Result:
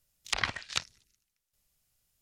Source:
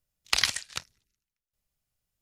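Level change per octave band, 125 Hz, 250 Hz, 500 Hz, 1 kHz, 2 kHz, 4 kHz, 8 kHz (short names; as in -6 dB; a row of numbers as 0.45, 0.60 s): +2.5, +2.0, +1.0, 0.0, -2.0, -6.5, -7.0 dB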